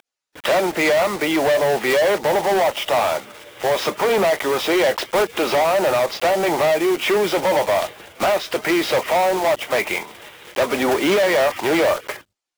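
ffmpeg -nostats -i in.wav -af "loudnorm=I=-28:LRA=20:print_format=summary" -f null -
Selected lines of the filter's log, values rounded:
Input Integrated:    -19.1 LUFS
Input True Peak:     -10.6 dBTP
Input LRA:             1.7 LU
Input Threshold:     -29.4 LUFS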